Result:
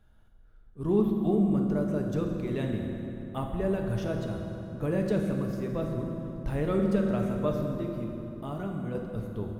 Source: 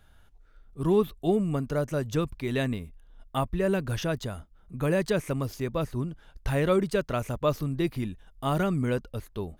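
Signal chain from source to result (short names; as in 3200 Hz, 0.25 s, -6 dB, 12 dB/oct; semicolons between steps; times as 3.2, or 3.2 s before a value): tilt shelf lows +5 dB, about 1100 Hz; 7.78–8.95 compressor 2.5:1, threshold -28 dBFS, peak gain reduction 7.5 dB; reverb RT60 3.3 s, pre-delay 5 ms, DRR 1 dB; gain -8 dB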